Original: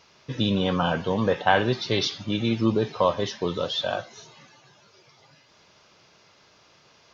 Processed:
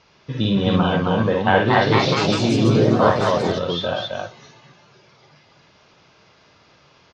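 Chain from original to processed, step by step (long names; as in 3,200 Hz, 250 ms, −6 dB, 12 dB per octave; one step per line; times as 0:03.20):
bass and treble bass +3 dB, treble −1 dB
loudspeakers that aren't time-aligned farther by 19 metres −4 dB, 91 metres −2 dB
0:01.44–0:03.71: delay with pitch and tempo change per echo 237 ms, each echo +3 semitones, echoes 3
high-frequency loss of the air 84 metres
level +1.5 dB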